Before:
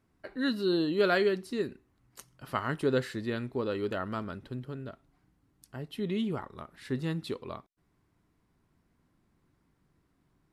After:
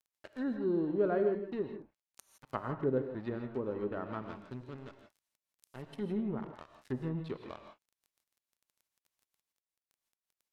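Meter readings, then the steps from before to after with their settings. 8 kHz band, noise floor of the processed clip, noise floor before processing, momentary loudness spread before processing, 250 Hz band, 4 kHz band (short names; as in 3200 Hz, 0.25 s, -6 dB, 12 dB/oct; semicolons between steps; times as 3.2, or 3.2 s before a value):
under -10 dB, under -85 dBFS, -73 dBFS, 17 LU, -3.5 dB, -19.0 dB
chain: crackle 34/s -43 dBFS; crossover distortion -43 dBFS; treble ducked by the level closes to 770 Hz, closed at -29 dBFS; non-linear reverb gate 0.19 s rising, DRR 6 dB; gain -2.5 dB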